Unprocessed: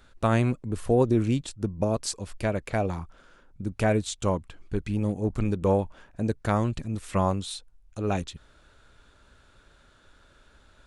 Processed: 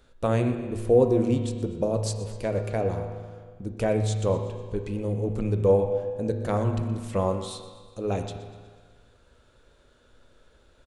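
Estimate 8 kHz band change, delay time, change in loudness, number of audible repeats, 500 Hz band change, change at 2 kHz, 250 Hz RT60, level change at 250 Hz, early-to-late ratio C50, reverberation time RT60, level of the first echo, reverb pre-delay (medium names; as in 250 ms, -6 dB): -3.0 dB, 122 ms, +1.0 dB, 2, +3.5 dB, -5.0 dB, 1.6 s, -1.0 dB, 6.0 dB, 1.6 s, -16.0 dB, 8 ms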